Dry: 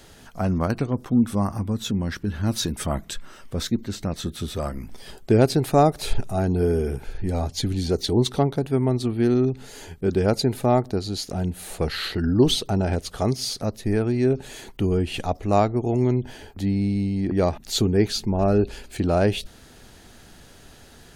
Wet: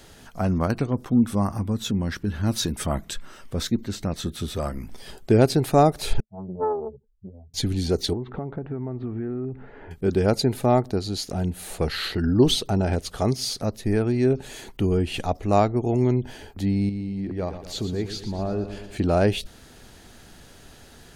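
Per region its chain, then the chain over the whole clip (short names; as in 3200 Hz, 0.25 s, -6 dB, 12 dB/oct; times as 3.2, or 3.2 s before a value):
6.2–7.54 spectral contrast raised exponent 2.9 + double band-pass 310 Hz, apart 1 oct + Doppler distortion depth 0.79 ms
8.13–9.91 LPF 1900 Hz 24 dB/oct + compressor 8:1, threshold -26 dBFS
16.89–18.97 high shelf 6600 Hz -10 dB + compressor 1.5:1, threshold -38 dBFS + feedback echo 0.117 s, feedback 56%, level -10.5 dB
whole clip: dry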